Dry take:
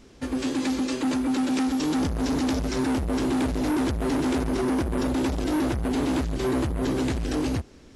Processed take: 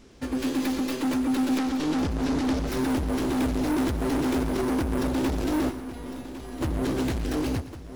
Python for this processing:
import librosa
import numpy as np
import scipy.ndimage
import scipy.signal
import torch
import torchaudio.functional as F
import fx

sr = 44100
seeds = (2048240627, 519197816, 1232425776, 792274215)

y = fx.tracing_dist(x, sr, depth_ms=0.15)
y = fx.lowpass(y, sr, hz=7400.0, slope=12, at=(1.58, 2.68))
y = fx.comb_fb(y, sr, f0_hz=240.0, decay_s=0.5, harmonics='all', damping=0.0, mix_pct=90, at=(5.69, 6.6), fade=0.02)
y = y + 10.0 ** (-13.5 / 20.0) * np.pad(y, (int(1105 * sr / 1000.0), 0))[:len(y)]
y = fx.echo_crushed(y, sr, ms=114, feedback_pct=35, bits=9, wet_db=-14.5)
y = y * librosa.db_to_amplitude(-1.0)